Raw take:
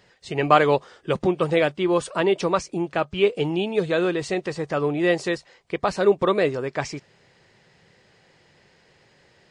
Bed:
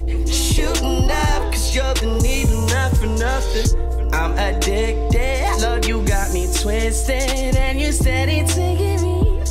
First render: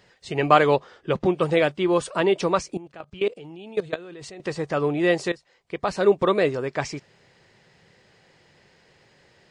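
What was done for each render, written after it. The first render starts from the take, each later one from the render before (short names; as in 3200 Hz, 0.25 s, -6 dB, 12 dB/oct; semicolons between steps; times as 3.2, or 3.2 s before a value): 0.76–1.26 air absorption 85 m; 2.77–4.4 level quantiser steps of 20 dB; 5.32–6.08 fade in linear, from -16 dB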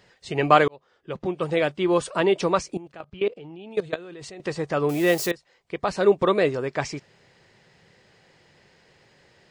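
0.68–1.92 fade in; 3.04–3.71 air absorption 140 m; 4.89–5.31 switching spikes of -24.5 dBFS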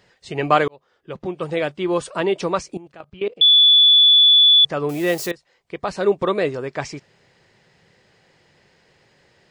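3.41–4.65 bleep 3450 Hz -8.5 dBFS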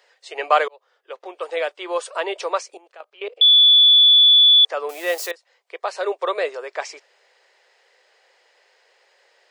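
steep high-pass 460 Hz 36 dB/oct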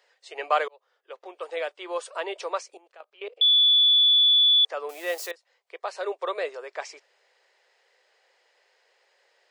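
gain -6.5 dB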